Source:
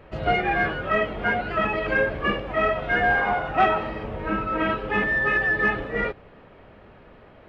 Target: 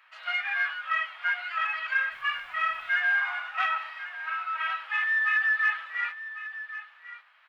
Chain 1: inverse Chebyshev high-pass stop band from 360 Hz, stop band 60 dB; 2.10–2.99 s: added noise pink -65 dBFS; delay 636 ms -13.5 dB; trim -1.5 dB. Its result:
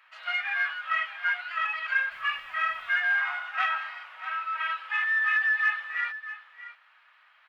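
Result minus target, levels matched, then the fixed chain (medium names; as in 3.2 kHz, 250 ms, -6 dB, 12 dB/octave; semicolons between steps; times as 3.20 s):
echo 461 ms early
inverse Chebyshev high-pass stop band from 360 Hz, stop band 60 dB; 2.10–2.99 s: added noise pink -65 dBFS; delay 1097 ms -13.5 dB; trim -1.5 dB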